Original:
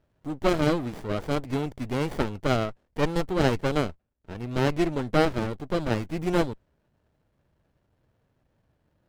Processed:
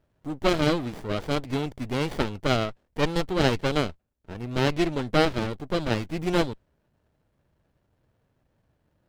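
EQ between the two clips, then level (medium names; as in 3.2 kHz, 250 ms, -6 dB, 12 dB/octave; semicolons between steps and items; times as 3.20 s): dynamic bell 3.7 kHz, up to +6 dB, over -46 dBFS, Q 0.88; 0.0 dB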